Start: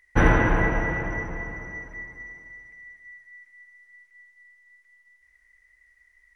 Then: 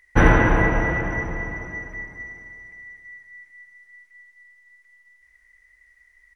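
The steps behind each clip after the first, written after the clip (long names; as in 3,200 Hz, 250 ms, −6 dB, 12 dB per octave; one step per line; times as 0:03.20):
repeating echo 338 ms, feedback 51%, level −18.5 dB
level +3.5 dB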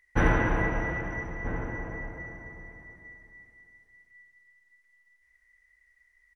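slap from a distant wall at 220 metres, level −10 dB
level −8.5 dB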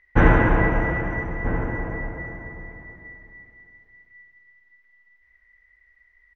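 high-frequency loss of the air 270 metres
level +8.5 dB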